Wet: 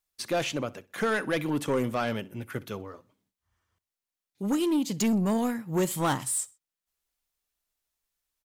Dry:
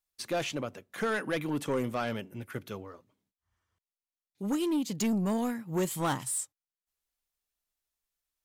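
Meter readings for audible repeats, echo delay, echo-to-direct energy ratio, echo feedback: 2, 63 ms, −22.0 dB, 36%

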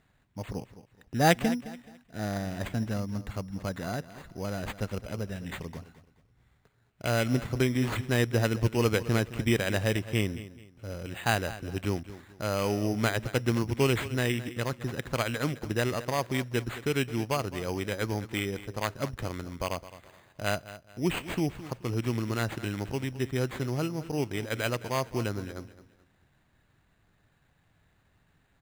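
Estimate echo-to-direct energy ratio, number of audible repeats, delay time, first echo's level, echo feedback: −15.0 dB, 2, 214 ms, −15.5 dB, 31%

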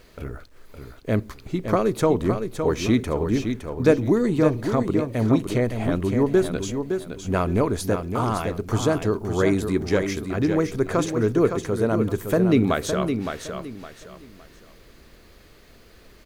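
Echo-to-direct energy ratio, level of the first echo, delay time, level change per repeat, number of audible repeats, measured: −6.5 dB, −7.0 dB, 563 ms, −11.0 dB, 3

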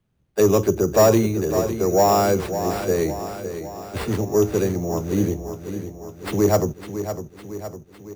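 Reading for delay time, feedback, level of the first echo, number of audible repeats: 556 ms, 57%, −10.0 dB, 6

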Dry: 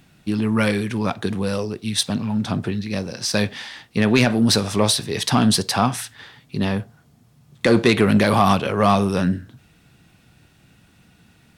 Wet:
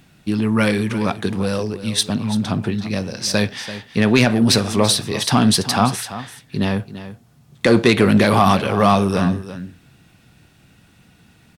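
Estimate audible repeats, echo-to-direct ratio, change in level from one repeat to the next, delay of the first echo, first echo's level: 1, −13.5 dB, repeats not evenly spaced, 338 ms, −13.5 dB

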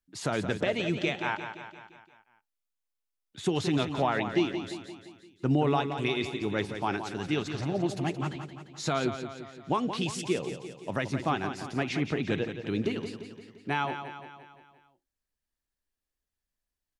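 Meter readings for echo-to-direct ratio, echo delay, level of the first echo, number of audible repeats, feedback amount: −7.5 dB, 173 ms, −9.0 dB, 6, 55%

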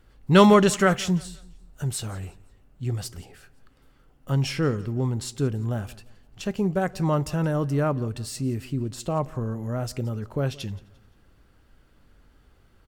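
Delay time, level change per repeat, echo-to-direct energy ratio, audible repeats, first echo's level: 173 ms, −8.5 dB, −21.5 dB, 2, −22.0 dB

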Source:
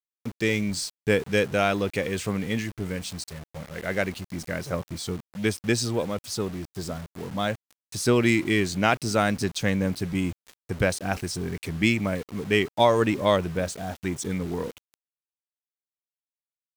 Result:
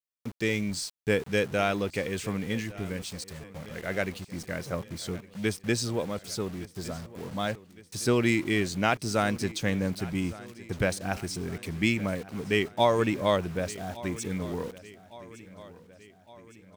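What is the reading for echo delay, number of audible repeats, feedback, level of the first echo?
1,161 ms, 4, 56%, −19.0 dB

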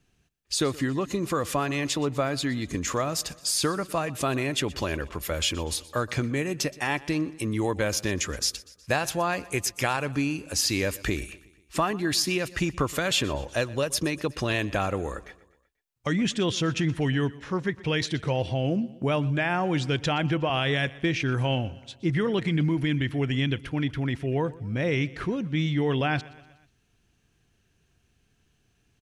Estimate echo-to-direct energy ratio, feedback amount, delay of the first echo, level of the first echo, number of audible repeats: −19.0 dB, 55%, 122 ms, −20.5 dB, 3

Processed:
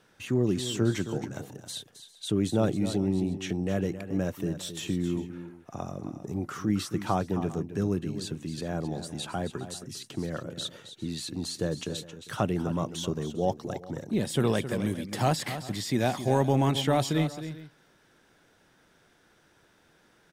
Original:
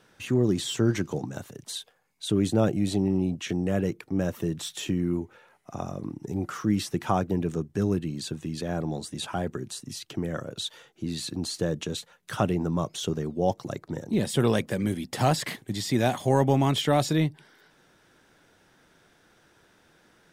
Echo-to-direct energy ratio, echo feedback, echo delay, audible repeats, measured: −11.0 dB, repeats not evenly spaced, 267 ms, 2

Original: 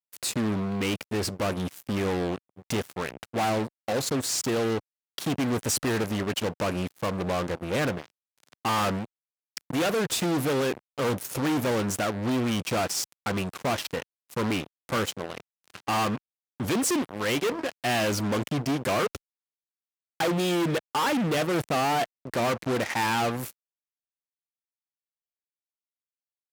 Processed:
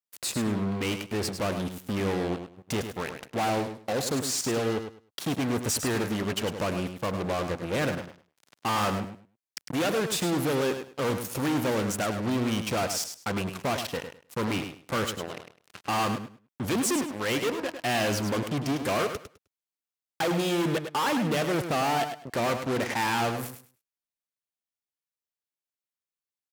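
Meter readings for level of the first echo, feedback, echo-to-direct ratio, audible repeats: −8.5 dB, 20%, −8.5 dB, 2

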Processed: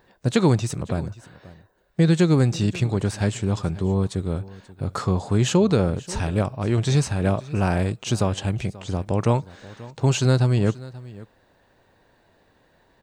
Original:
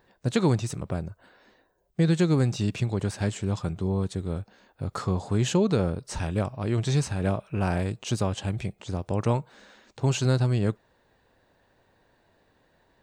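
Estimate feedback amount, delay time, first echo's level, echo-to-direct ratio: repeats not evenly spaced, 534 ms, −19.5 dB, −19.5 dB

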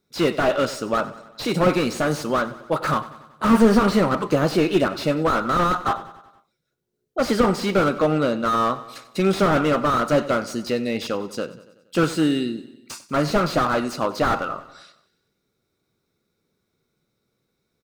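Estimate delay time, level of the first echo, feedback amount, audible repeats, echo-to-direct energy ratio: 94 ms, −16.5 dB, 58%, 4, −14.5 dB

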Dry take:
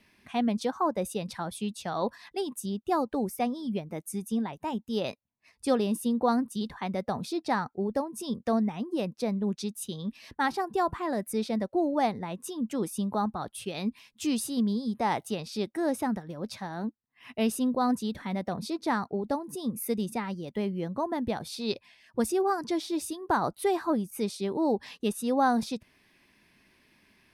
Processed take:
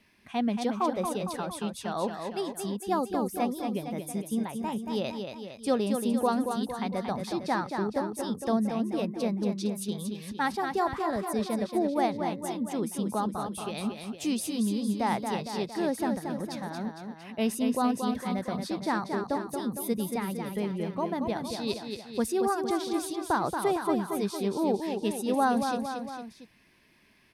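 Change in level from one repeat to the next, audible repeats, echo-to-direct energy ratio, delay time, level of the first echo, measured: −4.5 dB, 3, −4.5 dB, 229 ms, −6.0 dB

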